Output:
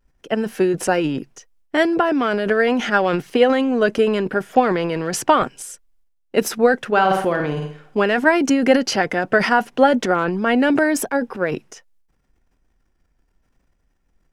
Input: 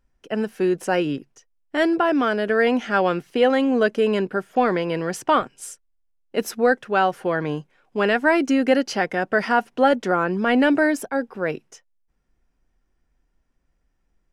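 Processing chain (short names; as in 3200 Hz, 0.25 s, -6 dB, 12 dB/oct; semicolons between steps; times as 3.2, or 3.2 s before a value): vibrato 0.74 Hz 30 cents; 6.87–7.97 flutter echo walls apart 9 m, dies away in 0.46 s; transient shaper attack +6 dB, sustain +10 dB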